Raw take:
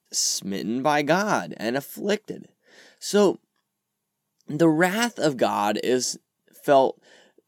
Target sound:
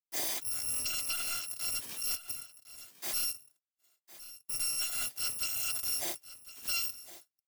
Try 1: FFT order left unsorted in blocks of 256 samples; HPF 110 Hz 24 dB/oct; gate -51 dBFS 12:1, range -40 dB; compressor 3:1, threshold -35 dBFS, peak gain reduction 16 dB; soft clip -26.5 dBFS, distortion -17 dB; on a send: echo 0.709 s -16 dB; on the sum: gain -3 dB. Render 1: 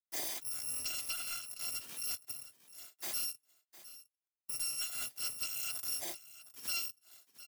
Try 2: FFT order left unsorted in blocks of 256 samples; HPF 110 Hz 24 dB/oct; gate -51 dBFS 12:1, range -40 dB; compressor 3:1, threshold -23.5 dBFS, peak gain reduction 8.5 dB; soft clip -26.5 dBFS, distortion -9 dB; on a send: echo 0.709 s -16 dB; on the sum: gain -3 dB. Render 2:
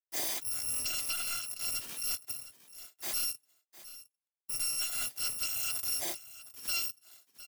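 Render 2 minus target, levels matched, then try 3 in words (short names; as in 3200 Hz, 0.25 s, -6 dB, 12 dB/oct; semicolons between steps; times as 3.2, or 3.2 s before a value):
echo 0.349 s early
FFT order left unsorted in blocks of 256 samples; HPF 110 Hz 24 dB/oct; gate -51 dBFS 12:1, range -40 dB; compressor 3:1, threshold -23.5 dBFS, peak gain reduction 8.5 dB; soft clip -26.5 dBFS, distortion -9 dB; on a send: echo 1.058 s -16 dB; on the sum: gain -3 dB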